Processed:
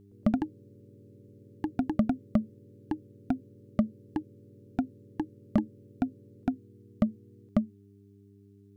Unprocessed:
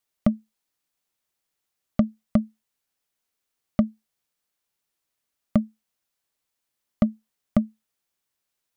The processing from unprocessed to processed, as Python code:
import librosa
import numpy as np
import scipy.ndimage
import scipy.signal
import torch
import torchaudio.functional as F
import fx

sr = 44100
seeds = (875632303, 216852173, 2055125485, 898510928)

y = fx.dmg_buzz(x, sr, base_hz=100.0, harmonics=4, level_db=-51.0, tilt_db=-3, odd_only=False)
y = fx.echo_pitch(y, sr, ms=116, semitones=3, count=2, db_per_echo=-3.0)
y = y * 10.0 ** (-5.0 / 20.0)